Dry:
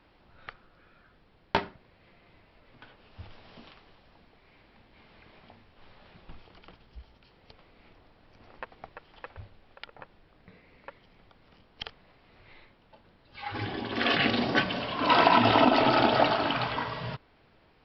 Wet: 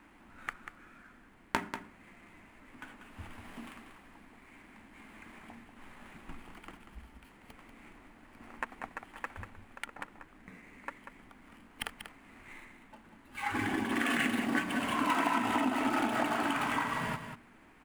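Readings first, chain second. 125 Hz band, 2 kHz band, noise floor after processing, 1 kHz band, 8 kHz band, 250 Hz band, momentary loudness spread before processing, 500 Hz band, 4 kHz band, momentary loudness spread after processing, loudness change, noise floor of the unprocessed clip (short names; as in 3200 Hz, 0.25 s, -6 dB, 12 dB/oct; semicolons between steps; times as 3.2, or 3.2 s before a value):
-8.5 dB, -3.5 dB, -59 dBFS, -7.0 dB, n/a, -3.0 dB, 22 LU, -11.0 dB, -10.5 dB, 22 LU, -8.5 dB, -62 dBFS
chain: median filter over 9 samples; ten-band EQ 125 Hz -6 dB, 250 Hz +12 dB, 500 Hz -7 dB, 1000 Hz +4 dB, 2000 Hz +7 dB, 4000 Hz -6 dB; compressor 5:1, threshold -29 dBFS, peak gain reduction 17 dB; high shelf 5000 Hz +9.5 dB; notches 60/120/180/240 Hz; on a send: echo 0.19 s -9 dB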